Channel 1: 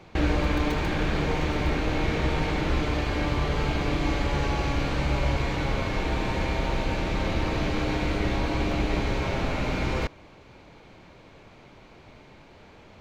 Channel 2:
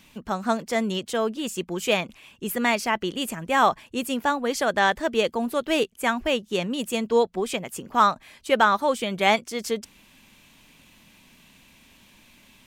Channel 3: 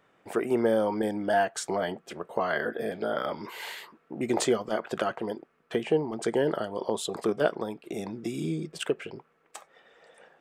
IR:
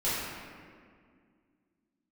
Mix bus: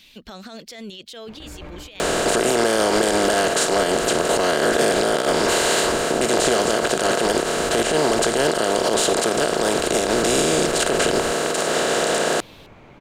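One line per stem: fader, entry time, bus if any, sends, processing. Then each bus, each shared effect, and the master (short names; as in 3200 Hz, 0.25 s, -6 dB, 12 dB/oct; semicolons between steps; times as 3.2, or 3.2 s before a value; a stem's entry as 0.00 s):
0.0 dB, 1.25 s, bus A, no send, bell 4800 Hz -7.5 dB 1.2 oct; compressor 4:1, threshold -32 dBFS, peak gain reduction 11.5 dB
-3.0 dB, 0.00 s, bus A, no send, graphic EQ 125/250/1000/4000/8000 Hz -10/-4/-10/+11/-4 dB
+2.0 dB, 2.00 s, no bus, no send, per-bin compression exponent 0.2; high shelf 2300 Hz +8 dB
bus A: 0.0 dB, negative-ratio compressor -35 dBFS, ratio -1; limiter -27 dBFS, peak gain reduction 9 dB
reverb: off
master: limiter -8.5 dBFS, peak gain reduction 11 dB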